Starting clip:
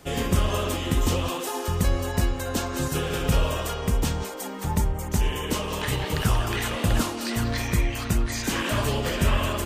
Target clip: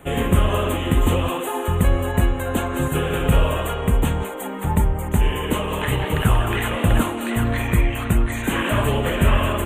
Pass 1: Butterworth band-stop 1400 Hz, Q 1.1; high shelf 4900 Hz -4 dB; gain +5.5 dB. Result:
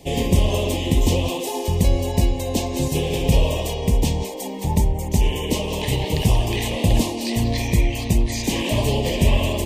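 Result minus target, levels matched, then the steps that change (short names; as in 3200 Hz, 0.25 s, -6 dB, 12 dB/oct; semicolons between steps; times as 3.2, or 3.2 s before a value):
1000 Hz band -4.5 dB
change: Butterworth band-stop 5100 Hz, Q 1.1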